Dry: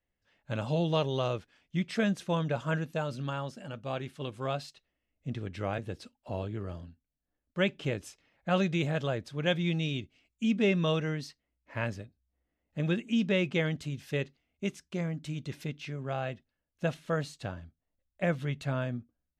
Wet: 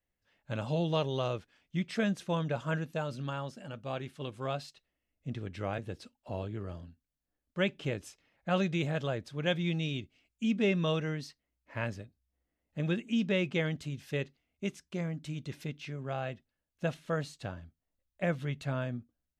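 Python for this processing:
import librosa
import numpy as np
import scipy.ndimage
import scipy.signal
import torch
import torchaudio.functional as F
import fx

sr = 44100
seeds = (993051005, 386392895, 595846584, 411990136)

y = x * librosa.db_to_amplitude(-2.0)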